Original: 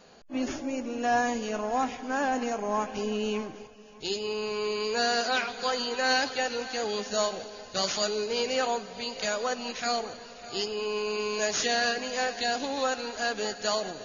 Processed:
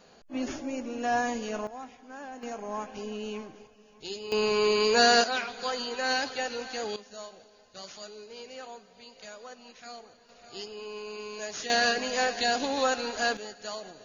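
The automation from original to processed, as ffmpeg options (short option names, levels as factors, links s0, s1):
-af "asetnsamples=n=441:p=0,asendcmd='1.67 volume volume -14.5dB;2.43 volume volume -6.5dB;4.32 volume volume 6dB;5.24 volume volume -3dB;6.96 volume volume -15.5dB;10.29 volume volume -9dB;11.7 volume volume 2dB;13.37 volume volume -9.5dB',volume=0.794"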